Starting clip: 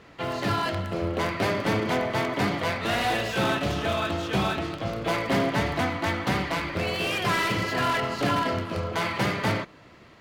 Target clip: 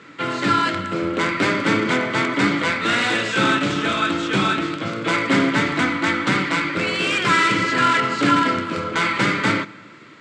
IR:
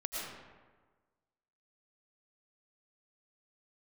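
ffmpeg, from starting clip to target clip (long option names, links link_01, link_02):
-filter_complex "[0:a]highpass=frequency=120:width=0.5412,highpass=frequency=120:width=1.3066,equalizer=frequency=290:width_type=q:width=4:gain=8,equalizer=frequency=710:width_type=q:width=4:gain=-10,equalizer=frequency=1400:width_type=q:width=4:gain=9,equalizer=frequency=2200:width_type=q:width=4:gain=6,equalizer=frequency=3600:width_type=q:width=4:gain=4,equalizer=frequency=7700:width_type=q:width=4:gain=9,lowpass=frequency=8200:width=0.5412,lowpass=frequency=8200:width=1.3066,asplit=2[link_01][link_02];[1:a]atrim=start_sample=2205,adelay=6[link_03];[link_02][link_03]afir=irnorm=-1:irlink=0,volume=-23.5dB[link_04];[link_01][link_04]amix=inputs=2:normalize=0,volume=4dB"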